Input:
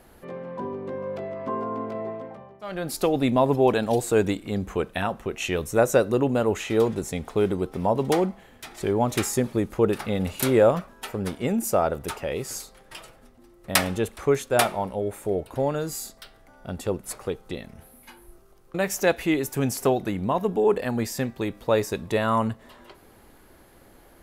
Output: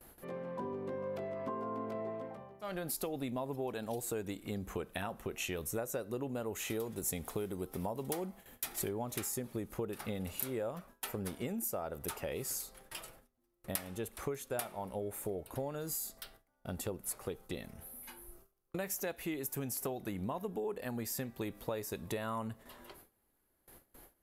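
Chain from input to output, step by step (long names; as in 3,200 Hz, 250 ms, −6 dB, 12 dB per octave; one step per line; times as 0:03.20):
parametric band 13,000 Hz +12.5 dB 0.85 octaves
downward compressor 8 to 1, threshold −29 dBFS, peak gain reduction 19 dB
noise gate with hold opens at −39 dBFS
0:06.52–0:08.89: high-shelf EQ 7,600 Hz +9 dB
level −6 dB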